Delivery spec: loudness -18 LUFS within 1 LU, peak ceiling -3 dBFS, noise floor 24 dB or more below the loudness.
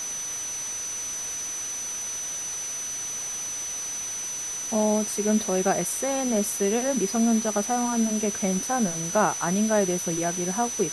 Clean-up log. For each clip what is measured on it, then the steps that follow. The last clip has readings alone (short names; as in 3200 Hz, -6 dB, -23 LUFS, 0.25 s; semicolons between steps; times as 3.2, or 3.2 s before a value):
steady tone 6000 Hz; tone level -30 dBFS; noise floor -32 dBFS; noise floor target -50 dBFS; loudness -25.5 LUFS; peak -9.0 dBFS; loudness target -18.0 LUFS
-> notch 6000 Hz, Q 30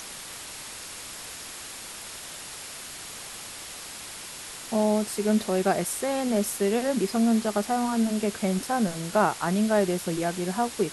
steady tone none; noise floor -40 dBFS; noise floor target -52 dBFS
-> denoiser 12 dB, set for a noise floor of -40 dBFS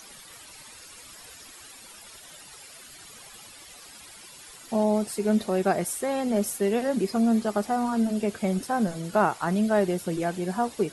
noise floor -47 dBFS; noise floor target -50 dBFS
-> denoiser 6 dB, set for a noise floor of -47 dBFS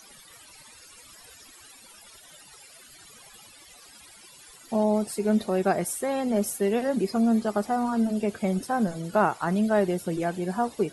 noise floor -51 dBFS; loudness -26.0 LUFS; peak -9.5 dBFS; loudness target -18.0 LUFS
-> gain +8 dB; limiter -3 dBFS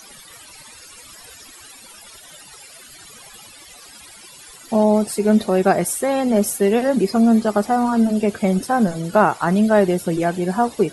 loudness -18.0 LUFS; peak -3.0 dBFS; noise floor -43 dBFS